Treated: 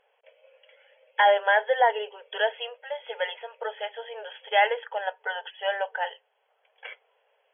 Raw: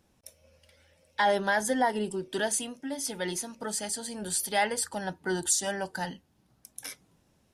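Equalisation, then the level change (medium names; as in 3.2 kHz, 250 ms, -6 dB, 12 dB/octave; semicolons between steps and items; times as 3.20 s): brick-wall FIR band-pass 420–3400 Hz; peaking EQ 1.2 kHz -6 dB 0.39 oct; +6.5 dB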